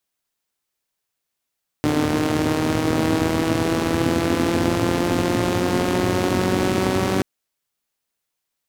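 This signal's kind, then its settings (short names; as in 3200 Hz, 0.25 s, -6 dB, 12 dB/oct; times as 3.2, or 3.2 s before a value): four-cylinder engine model, changing speed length 5.38 s, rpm 4500, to 5700, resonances 110/250 Hz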